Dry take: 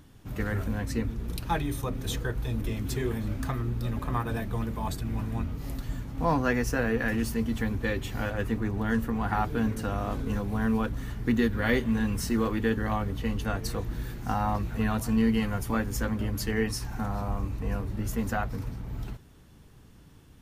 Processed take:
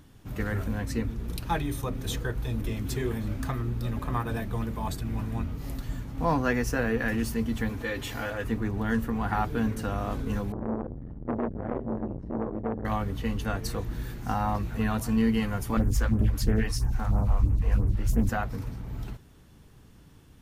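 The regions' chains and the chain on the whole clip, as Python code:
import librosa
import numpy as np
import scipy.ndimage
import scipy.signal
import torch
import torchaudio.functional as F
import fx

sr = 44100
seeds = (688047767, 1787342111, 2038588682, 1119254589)

y = fx.chain(x, sr, fx.low_shelf(hz=220.0, db=-10.5),
    fx.notch_comb(f0_hz=190.0),
    fx.env_flatten(amount_pct=50), at=(7.69, 8.44))
y = fx.chain(y, sr, fx.cheby1_lowpass(hz=560.0, order=2),
    fx.transformer_sat(knee_hz=680.0), at=(10.52, 12.85))
y = fx.chain(y, sr, fx.low_shelf(hz=150.0, db=11.0),
    fx.phaser_stages(stages=2, low_hz=130.0, high_hz=4200.0, hz=3.0, feedback_pct=15),
    fx.doppler_dist(depth_ms=0.37), at=(15.77, 18.29))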